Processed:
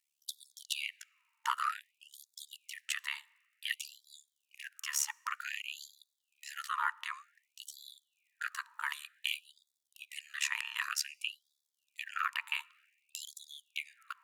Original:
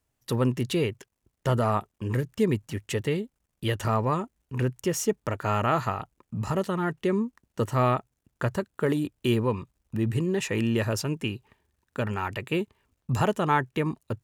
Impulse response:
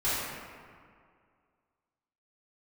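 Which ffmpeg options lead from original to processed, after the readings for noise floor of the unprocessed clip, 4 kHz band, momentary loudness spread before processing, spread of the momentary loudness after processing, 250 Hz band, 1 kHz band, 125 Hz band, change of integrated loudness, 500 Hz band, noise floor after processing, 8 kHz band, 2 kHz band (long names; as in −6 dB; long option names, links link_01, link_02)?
−80 dBFS, −1.0 dB, 9 LU, 17 LU, below −40 dB, −10.5 dB, below −40 dB, −10.5 dB, below −40 dB, −85 dBFS, −1.0 dB, −2.5 dB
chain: -filter_complex "[0:a]tremolo=f=72:d=0.974,highpass=frequency=610:width_type=q:width=4.9,asplit=2[link_01][link_02];[1:a]atrim=start_sample=2205[link_03];[link_02][link_03]afir=irnorm=-1:irlink=0,volume=-35dB[link_04];[link_01][link_04]amix=inputs=2:normalize=0,afftfilt=real='re*gte(b*sr/1024,860*pow(3400/860,0.5+0.5*sin(2*PI*0.54*pts/sr)))':imag='im*gte(b*sr/1024,860*pow(3400/860,0.5+0.5*sin(2*PI*0.54*pts/sr)))':win_size=1024:overlap=0.75,volume=3dB"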